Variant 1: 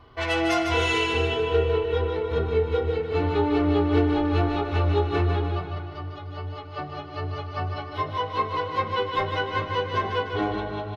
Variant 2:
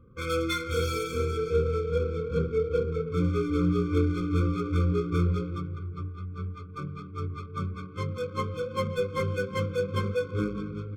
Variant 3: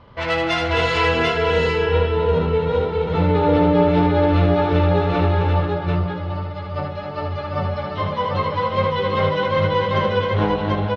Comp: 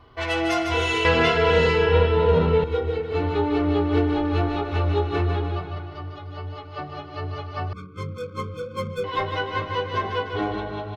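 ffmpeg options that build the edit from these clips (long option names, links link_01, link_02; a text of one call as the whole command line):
ffmpeg -i take0.wav -i take1.wav -i take2.wav -filter_complex "[0:a]asplit=3[link_01][link_02][link_03];[link_01]atrim=end=1.052[link_04];[2:a]atrim=start=1.048:end=2.642[link_05];[link_02]atrim=start=2.638:end=7.732[link_06];[1:a]atrim=start=7.728:end=9.042[link_07];[link_03]atrim=start=9.038[link_08];[link_04][link_05]acrossfade=duration=0.004:curve1=hsin:curve2=hsin[link_09];[link_09][link_06]acrossfade=duration=0.004:curve1=hsin:curve2=hsin[link_10];[link_10][link_07]acrossfade=duration=0.004:curve1=hsin:curve2=hsin[link_11];[link_11][link_08]acrossfade=duration=0.004:curve1=hsin:curve2=hsin" out.wav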